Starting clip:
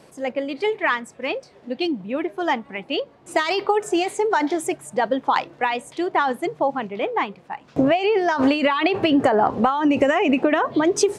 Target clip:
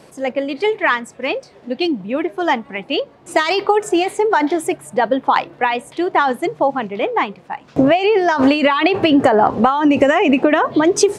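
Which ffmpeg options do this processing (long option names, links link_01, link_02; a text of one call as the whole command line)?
ffmpeg -i in.wav -filter_complex "[0:a]asettb=1/sr,asplit=3[link_01][link_02][link_03];[link_01]atrim=end=3.894[link_04];[link_02]atrim=start=3.89:end=6.07,asetpts=PTS-STARTPTS,afade=type=in:duration=0.004:curve=qsin,afade=type=out:start_time=2.176:duration=0.004:curve=qsin,equalizer=frequency=6500:width_type=o:width=1:gain=-6[link_05];[link_03]atrim=start=6.066[link_06];[link_04][link_05]acrossfade=duration=0.004:curve1=hsin:curve2=qsin[link_07];[link_07][link_06]acrossfade=duration=0.004:curve1=qsin:curve2=hsin,volume=5dB" out.wav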